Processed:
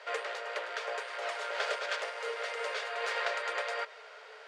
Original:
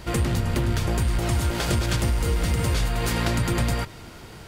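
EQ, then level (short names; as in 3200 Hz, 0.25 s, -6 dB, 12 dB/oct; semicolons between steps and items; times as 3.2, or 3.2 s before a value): rippled Chebyshev high-pass 420 Hz, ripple 6 dB; air absorption 120 m; 0.0 dB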